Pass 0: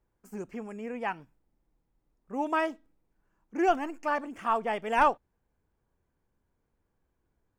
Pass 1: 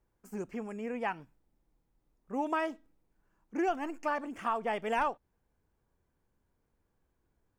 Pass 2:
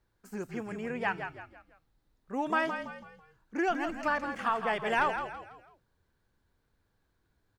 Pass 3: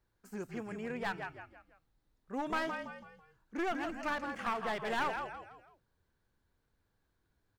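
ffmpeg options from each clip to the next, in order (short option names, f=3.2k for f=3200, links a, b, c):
-af "acompressor=threshold=-28dB:ratio=4"
-filter_complex "[0:a]equalizer=f=100:t=o:w=0.67:g=5,equalizer=f=1.6k:t=o:w=0.67:g=7,equalizer=f=4k:t=o:w=0.67:g=10,asplit=5[a][b][c][d][e];[b]adelay=165,afreqshift=-44,volume=-8dB[f];[c]adelay=330,afreqshift=-88,volume=-16.2dB[g];[d]adelay=495,afreqshift=-132,volume=-24.4dB[h];[e]adelay=660,afreqshift=-176,volume=-32.5dB[i];[a][f][g][h][i]amix=inputs=5:normalize=0"
-af "aeval=exprs='clip(val(0),-1,0.0299)':c=same,volume=-3.5dB"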